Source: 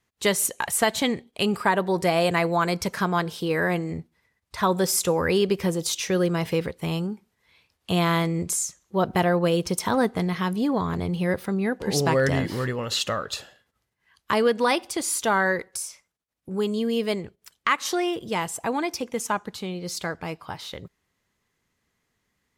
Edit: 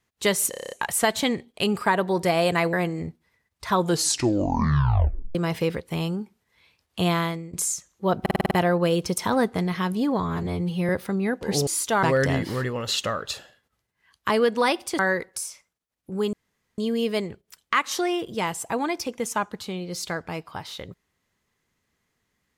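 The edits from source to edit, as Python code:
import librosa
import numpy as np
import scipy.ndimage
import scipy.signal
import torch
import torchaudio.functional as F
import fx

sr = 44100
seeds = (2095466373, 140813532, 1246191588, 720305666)

y = fx.edit(x, sr, fx.stutter(start_s=0.5, slice_s=0.03, count=8),
    fx.cut(start_s=2.52, length_s=1.12),
    fx.tape_stop(start_s=4.68, length_s=1.58),
    fx.fade_out_to(start_s=7.99, length_s=0.45, floor_db=-19.5),
    fx.stutter(start_s=9.12, slice_s=0.05, count=7),
    fx.stretch_span(start_s=10.84, length_s=0.44, factor=1.5),
    fx.move(start_s=15.02, length_s=0.36, to_s=12.06),
    fx.insert_room_tone(at_s=16.72, length_s=0.45), tone=tone)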